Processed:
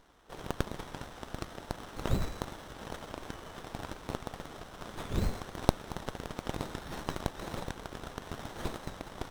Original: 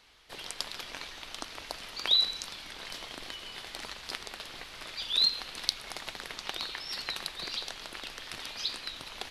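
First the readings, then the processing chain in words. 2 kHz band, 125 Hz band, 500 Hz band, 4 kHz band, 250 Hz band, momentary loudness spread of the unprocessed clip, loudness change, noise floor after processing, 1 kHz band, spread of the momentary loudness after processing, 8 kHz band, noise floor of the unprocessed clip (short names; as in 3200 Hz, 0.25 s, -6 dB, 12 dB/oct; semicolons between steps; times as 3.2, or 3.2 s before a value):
-5.0 dB, +19.0 dB, +8.5 dB, -17.5 dB, +13.0 dB, 16 LU, -6.5 dB, -50 dBFS, +4.0 dB, 10 LU, -6.0 dB, -47 dBFS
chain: pre-echo 63 ms -22.5 dB; running maximum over 17 samples; gain +1 dB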